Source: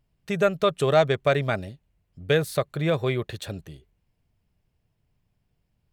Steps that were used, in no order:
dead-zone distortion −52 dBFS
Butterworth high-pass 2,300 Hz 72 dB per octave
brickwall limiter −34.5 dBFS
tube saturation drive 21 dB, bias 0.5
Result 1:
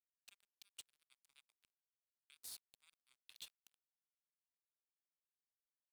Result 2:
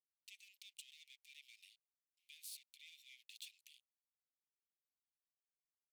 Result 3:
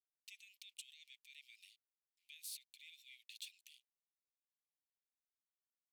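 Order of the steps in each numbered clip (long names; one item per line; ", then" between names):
brickwall limiter, then tube saturation, then Butterworth high-pass, then dead-zone distortion
brickwall limiter, then tube saturation, then dead-zone distortion, then Butterworth high-pass
dead-zone distortion, then brickwall limiter, then tube saturation, then Butterworth high-pass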